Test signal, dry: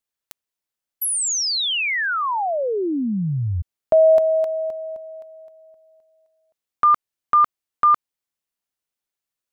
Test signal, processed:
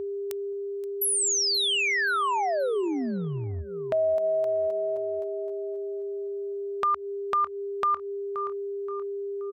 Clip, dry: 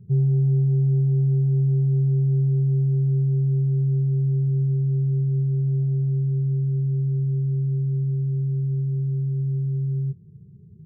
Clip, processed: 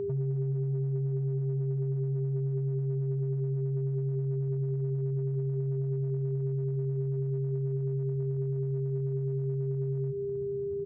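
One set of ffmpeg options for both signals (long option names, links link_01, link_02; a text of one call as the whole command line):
ffmpeg -i in.wav -af "aeval=exprs='val(0)+0.0316*sin(2*PI*400*n/s)':channel_layout=same,equalizer=frequency=75:width_type=o:width=0.67:gain=13.5,aecho=1:1:526|1052|1578:0.112|0.0393|0.0137,acompressor=threshold=-24dB:ratio=6:attack=0.96:release=230:knee=6:detection=peak,lowshelf=frequency=160:gain=-12,volume=2.5dB" out.wav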